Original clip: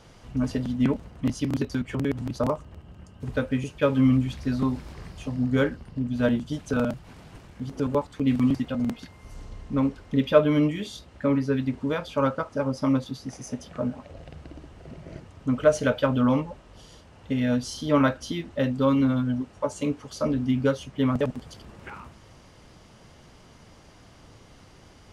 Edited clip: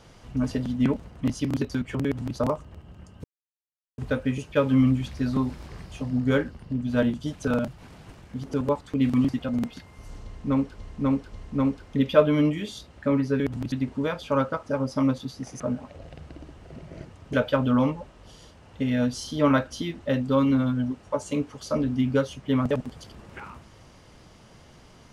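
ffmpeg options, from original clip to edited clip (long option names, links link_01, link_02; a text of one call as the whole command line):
ffmpeg -i in.wav -filter_complex "[0:a]asplit=8[link_01][link_02][link_03][link_04][link_05][link_06][link_07][link_08];[link_01]atrim=end=3.24,asetpts=PTS-STARTPTS,afade=type=out:start_time=3.236:duration=0.004:curve=hsin,apad=pad_dur=0.74[link_09];[link_02]atrim=start=3.24:end=10.042,asetpts=PTS-STARTPTS,afade=type=in:duration=0.004:curve=hsin[link_10];[link_03]atrim=start=9.498:end=10.042[link_11];[link_04]atrim=start=9.498:end=11.582[link_12];[link_05]atrim=start=2.048:end=2.372[link_13];[link_06]atrim=start=11.578:end=13.462[link_14];[link_07]atrim=start=13.748:end=15.482[link_15];[link_08]atrim=start=15.828[link_16];[link_09][link_10]concat=n=2:v=0:a=1[link_17];[link_17][link_11]acrossfade=duration=0.004:curve1=hsin:curve2=hsin[link_18];[link_18][link_12]acrossfade=duration=0.004:curve1=hsin:curve2=hsin[link_19];[link_19][link_13]acrossfade=duration=0.004:curve1=hsin:curve2=hsin[link_20];[link_20][link_14]acrossfade=duration=0.004:curve1=hsin:curve2=hsin[link_21];[link_21][link_15]acrossfade=duration=0.004:curve1=hsin:curve2=hsin[link_22];[link_22][link_16]acrossfade=duration=0.004:curve1=hsin:curve2=hsin" out.wav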